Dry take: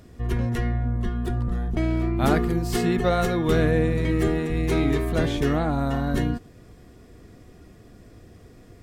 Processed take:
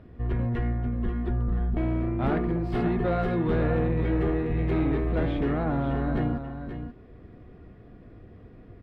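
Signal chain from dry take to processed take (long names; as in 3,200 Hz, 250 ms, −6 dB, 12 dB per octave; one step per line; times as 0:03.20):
soft clipping −19.5 dBFS, distortion −13 dB
high-frequency loss of the air 450 metres
single-tap delay 533 ms −9 dB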